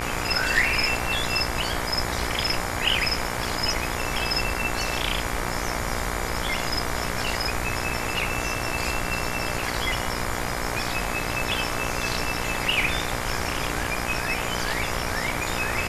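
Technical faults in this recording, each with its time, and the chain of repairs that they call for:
buzz 60 Hz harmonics 39 -31 dBFS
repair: de-hum 60 Hz, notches 39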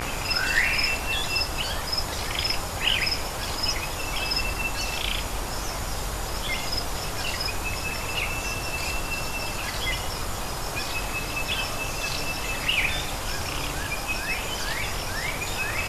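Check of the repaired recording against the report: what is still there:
nothing left

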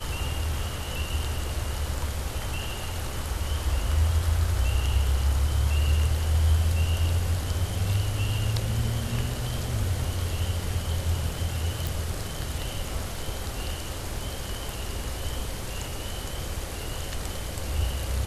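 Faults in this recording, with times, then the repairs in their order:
11.87 s: pop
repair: de-click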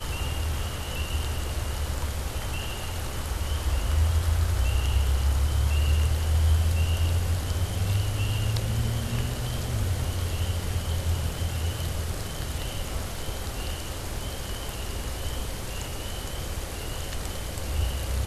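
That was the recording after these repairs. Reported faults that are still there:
nothing left

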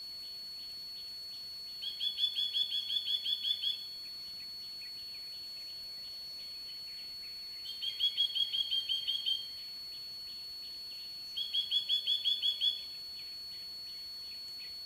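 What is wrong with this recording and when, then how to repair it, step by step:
whine 4.4 kHz -42 dBFS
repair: band-stop 4.4 kHz, Q 30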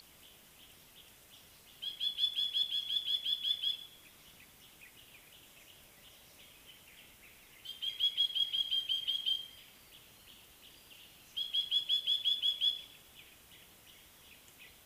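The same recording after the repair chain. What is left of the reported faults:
nothing left

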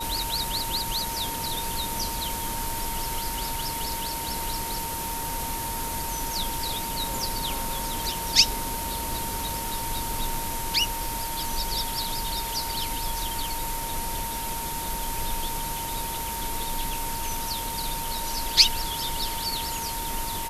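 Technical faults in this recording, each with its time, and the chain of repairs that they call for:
whine 920 Hz -33 dBFS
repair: band-stop 920 Hz, Q 30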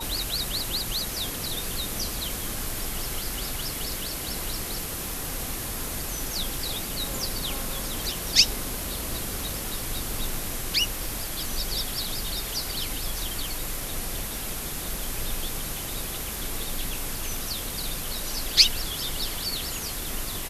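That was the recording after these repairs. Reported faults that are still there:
nothing left

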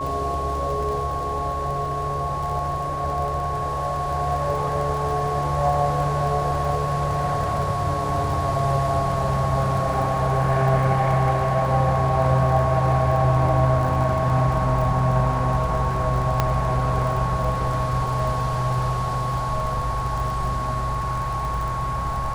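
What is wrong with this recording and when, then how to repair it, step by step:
crackle 27 per s -28 dBFS
whine 1.1 kHz -26 dBFS
16.40 s: pop -6 dBFS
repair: de-click; band-stop 1.1 kHz, Q 30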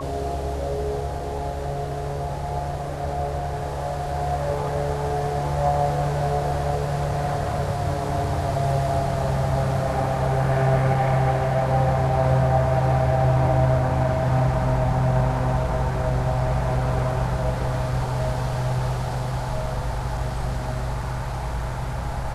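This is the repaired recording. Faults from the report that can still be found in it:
nothing left

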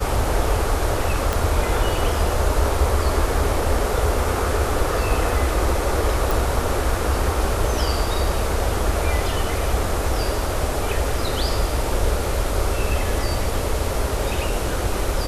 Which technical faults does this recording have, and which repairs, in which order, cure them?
1.33 s: pop
6.31 s: pop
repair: de-click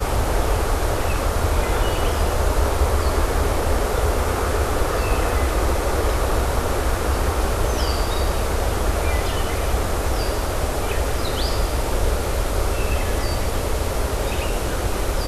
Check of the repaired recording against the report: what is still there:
1.33 s: pop

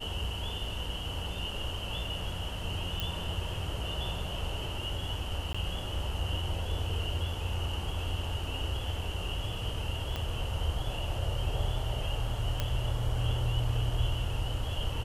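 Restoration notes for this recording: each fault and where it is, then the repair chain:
3.00 s: pop
5.53–5.54 s: dropout 15 ms
10.16 s: pop -20 dBFS
12.60 s: pop -16 dBFS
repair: de-click; interpolate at 5.53 s, 15 ms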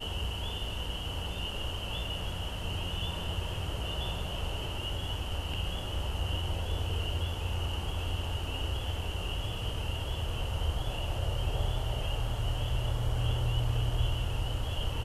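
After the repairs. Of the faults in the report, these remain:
10.16 s: pop
12.60 s: pop

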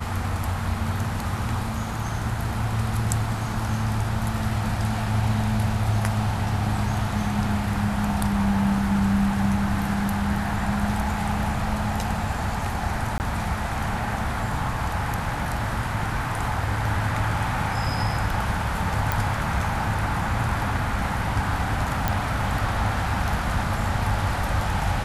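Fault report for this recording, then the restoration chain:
13.18–13.20 s: dropout 19 ms
19.12 s: pop
22.08 s: pop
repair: de-click; interpolate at 13.18 s, 19 ms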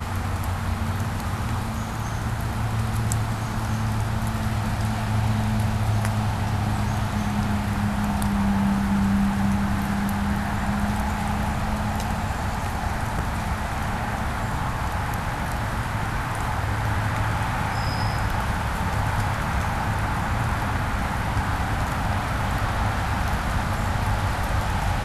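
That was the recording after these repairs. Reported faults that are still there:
nothing left

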